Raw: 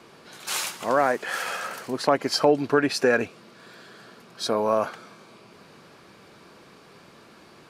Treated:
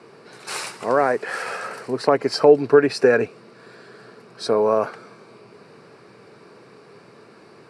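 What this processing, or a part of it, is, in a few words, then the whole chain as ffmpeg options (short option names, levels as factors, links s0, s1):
car door speaker: -af "highpass=110,equalizer=f=120:t=q:w=4:g=7,equalizer=f=430:t=q:w=4:g=8,equalizer=f=3300:t=q:w=4:g=-10,equalizer=f=6600:t=q:w=4:g=-9,lowpass=f=9400:w=0.5412,lowpass=f=9400:w=1.3066,volume=1.19"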